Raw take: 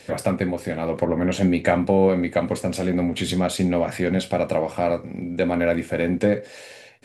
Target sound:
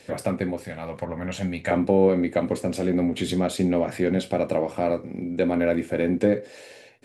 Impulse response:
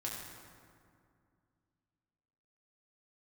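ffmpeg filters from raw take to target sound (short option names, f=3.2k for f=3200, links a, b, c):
-af "asetnsamples=n=441:p=0,asendcmd='0.64 equalizer g -10;1.71 equalizer g 6.5',equalizer=f=340:t=o:w=1.2:g=2.5,volume=-4.5dB"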